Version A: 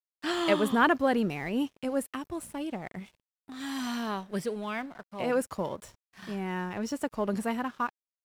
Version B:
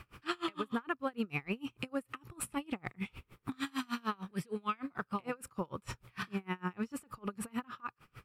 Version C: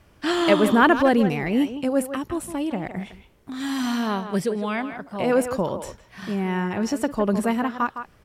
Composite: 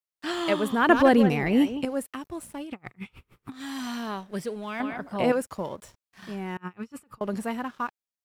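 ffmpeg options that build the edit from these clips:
-filter_complex "[2:a]asplit=2[a][b];[1:a]asplit=2[c][d];[0:a]asplit=5[e][f][g][h][i];[e]atrim=end=0.892[j];[a]atrim=start=0.888:end=1.852[k];[f]atrim=start=1.848:end=2.75[l];[c]atrim=start=2.59:end=3.63[m];[g]atrim=start=3.47:end=4.802[n];[b]atrim=start=4.798:end=5.322[o];[h]atrim=start=5.318:end=6.572[p];[d]atrim=start=6.568:end=7.212[q];[i]atrim=start=7.208[r];[j][k]acrossfade=d=0.004:c1=hsin:c2=hsin[s];[s][l]acrossfade=d=0.004:c1=hsin:c2=hsin[t];[t][m]acrossfade=d=0.16:c1=tri:c2=tri[u];[u][n]acrossfade=d=0.16:c1=tri:c2=tri[v];[v][o]acrossfade=d=0.004:c1=hsin:c2=hsin[w];[w][p]acrossfade=d=0.004:c1=hsin:c2=hsin[x];[x][q]acrossfade=d=0.004:c1=hsin:c2=hsin[y];[y][r]acrossfade=d=0.004:c1=hsin:c2=hsin"

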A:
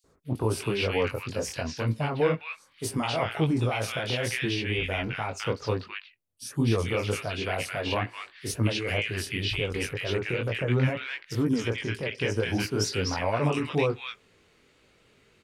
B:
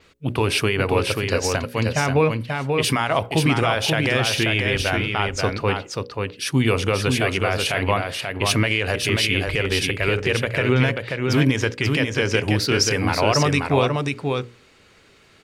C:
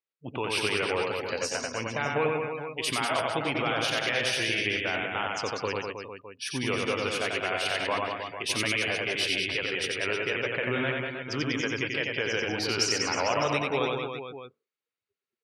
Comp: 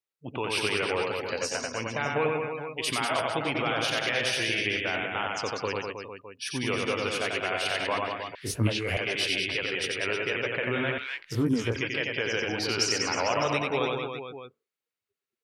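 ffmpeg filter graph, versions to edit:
-filter_complex "[0:a]asplit=2[a][b];[2:a]asplit=3[c][d][e];[c]atrim=end=8.352[f];[a]atrim=start=8.348:end=8.972[g];[d]atrim=start=8.968:end=10.982[h];[b]atrim=start=10.978:end=11.762[i];[e]atrim=start=11.758[j];[f][g]acrossfade=d=0.004:c1=hsin:c2=hsin[k];[k][h]acrossfade=d=0.004:c1=hsin:c2=hsin[l];[l][i]acrossfade=d=0.004:c1=hsin:c2=hsin[m];[m][j]acrossfade=d=0.004:c1=hsin:c2=hsin"

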